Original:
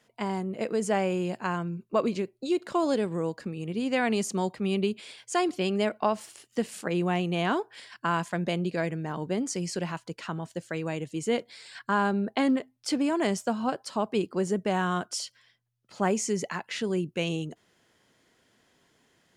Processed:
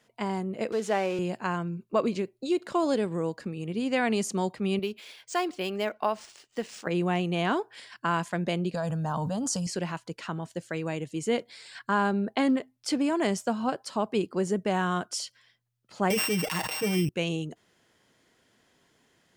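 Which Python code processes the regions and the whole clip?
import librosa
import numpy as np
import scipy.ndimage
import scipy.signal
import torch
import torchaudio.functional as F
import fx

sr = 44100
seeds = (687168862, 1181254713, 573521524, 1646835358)

y = fx.chain(x, sr, fx.crossing_spikes(level_db=-26.0),
    fx.bandpass_edges(low_hz=260.0, high_hz=4600.0), at=(0.72, 1.19))
y = fx.chain(y, sr, fx.peak_eq(hz=140.0, db=-8.5, octaves=2.7),
    fx.resample_linear(factor=3), at=(4.79, 6.87))
y = fx.chain(y, sr, fx.fixed_phaser(hz=890.0, stages=4),
    fx.env_flatten(amount_pct=100), at=(8.74, 9.67))
y = fx.chain(y, sr, fx.sample_sort(block=16),
    fx.comb(ms=6.4, depth=0.86),
    fx.sustainer(db_per_s=32.0), at=(16.1, 17.09))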